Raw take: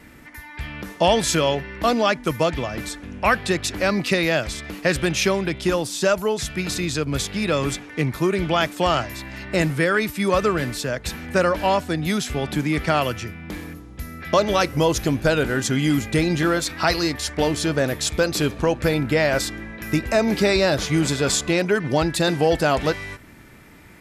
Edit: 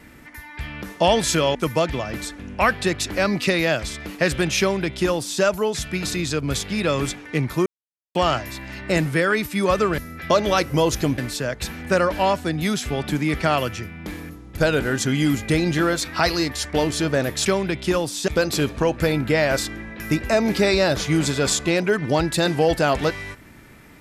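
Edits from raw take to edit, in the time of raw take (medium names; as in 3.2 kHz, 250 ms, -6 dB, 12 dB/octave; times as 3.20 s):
1.55–2.19 s: delete
5.24–6.06 s: copy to 18.10 s
8.30–8.79 s: mute
14.01–15.21 s: move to 10.62 s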